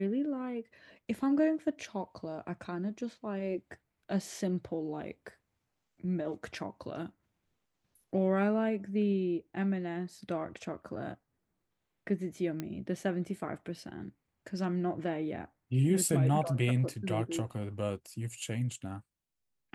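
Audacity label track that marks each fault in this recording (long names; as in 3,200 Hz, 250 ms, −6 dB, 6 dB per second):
12.600000	12.600000	click −22 dBFS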